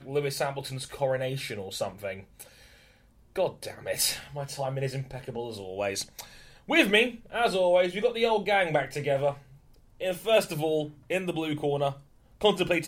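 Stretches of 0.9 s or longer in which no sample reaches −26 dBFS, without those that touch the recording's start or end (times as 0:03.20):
0:02.11–0:03.38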